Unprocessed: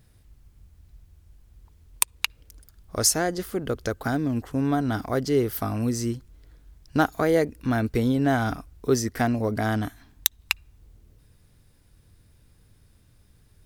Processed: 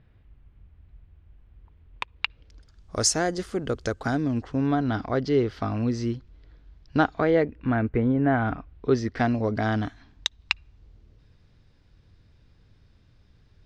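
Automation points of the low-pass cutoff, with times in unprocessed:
low-pass 24 dB/octave
2.10 s 3 kHz
2.96 s 8 kHz
3.93 s 8 kHz
4.78 s 4.6 kHz
6.97 s 4.6 kHz
8.14 s 2 kHz
9.27 s 5.2 kHz

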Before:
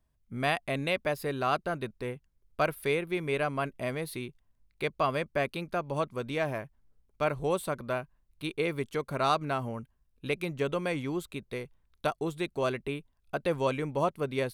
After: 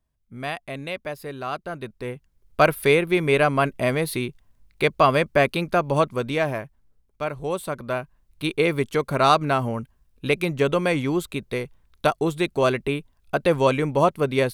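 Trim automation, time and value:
1.57 s -1.5 dB
2.65 s +11 dB
5.95 s +11 dB
7.30 s +0.5 dB
8.47 s +9.5 dB

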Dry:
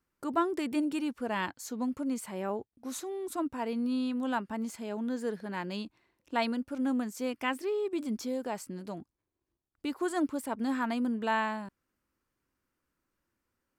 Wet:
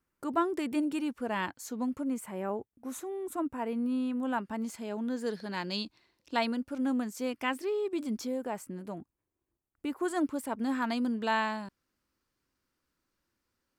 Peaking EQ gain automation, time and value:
peaking EQ 4.5 kHz 0.97 oct
-2.5 dB
from 2.02 s -11.5 dB
from 4.38 s 0 dB
from 5.26 s +11.5 dB
from 6.39 s +0.5 dB
from 8.27 s -9.5 dB
from 10.05 s -1.5 dB
from 10.82 s +7 dB

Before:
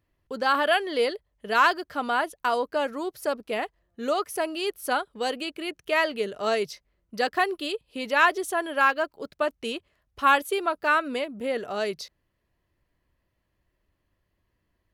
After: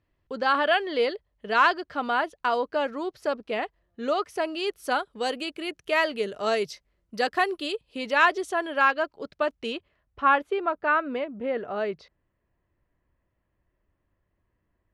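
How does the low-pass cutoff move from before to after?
4.17 s 4.8 kHz
5.28 s 10 kHz
7.47 s 10 kHz
8.81 s 5.4 kHz
9.66 s 5.4 kHz
10.24 s 2 kHz

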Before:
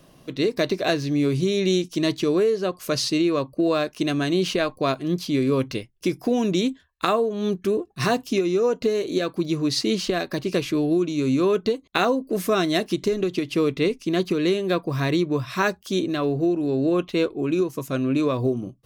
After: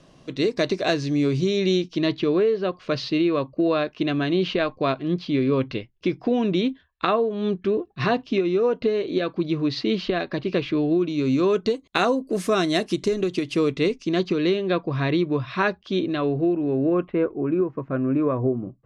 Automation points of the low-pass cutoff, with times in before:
low-pass 24 dB/octave
1.12 s 7.8 kHz
2.21 s 3.9 kHz
10.95 s 3.9 kHz
11.87 s 10 kHz
13.48 s 10 kHz
14.74 s 4 kHz
16.16 s 4 kHz
17.23 s 1.8 kHz

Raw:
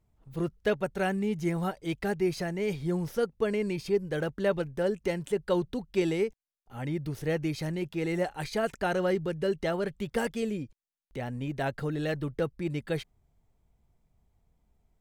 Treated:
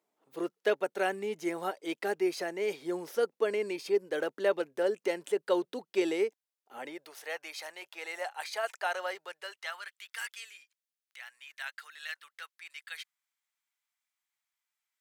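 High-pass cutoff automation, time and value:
high-pass 24 dB/octave
6.76 s 320 Hz
7.18 s 690 Hz
9.20 s 690 Hz
9.97 s 1.4 kHz

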